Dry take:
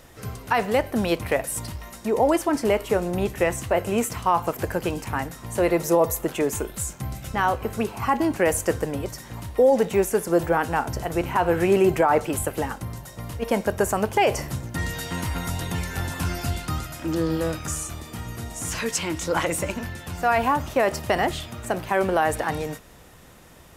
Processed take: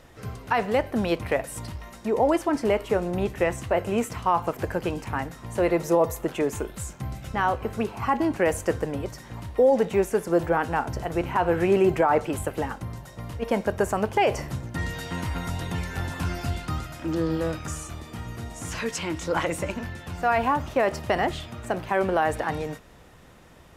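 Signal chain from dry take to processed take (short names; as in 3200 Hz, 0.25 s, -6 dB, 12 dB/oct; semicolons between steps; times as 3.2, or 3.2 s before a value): high shelf 6700 Hz -11 dB; gain -1.5 dB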